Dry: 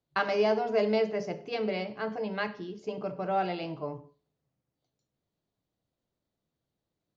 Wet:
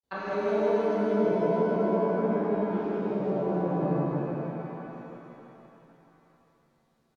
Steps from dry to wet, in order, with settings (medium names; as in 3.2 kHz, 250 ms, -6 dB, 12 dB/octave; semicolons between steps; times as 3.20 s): granulator 100 ms, grains 20 per s, spray 100 ms, pitch spread up and down by 0 st; compression, threshold -29 dBFS, peak gain reduction 8 dB; low-pass that closes with the level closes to 420 Hz, closed at -34 dBFS; feedback delay 162 ms, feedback 51%, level -4.5 dB; pitch-shifted reverb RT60 3.2 s, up +7 st, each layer -8 dB, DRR -9.5 dB